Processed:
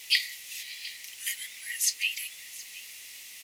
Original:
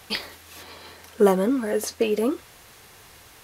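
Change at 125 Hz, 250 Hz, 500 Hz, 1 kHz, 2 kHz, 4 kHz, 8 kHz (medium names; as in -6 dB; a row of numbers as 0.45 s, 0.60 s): no reading, under -40 dB, under -40 dB, under -30 dB, +3.5 dB, +5.0 dB, +6.5 dB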